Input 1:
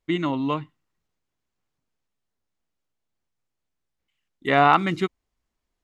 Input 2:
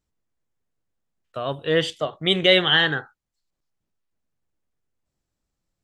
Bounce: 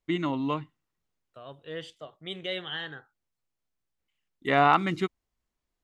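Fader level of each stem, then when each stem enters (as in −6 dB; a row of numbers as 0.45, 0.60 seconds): −4.0, −17.5 decibels; 0.00, 0.00 seconds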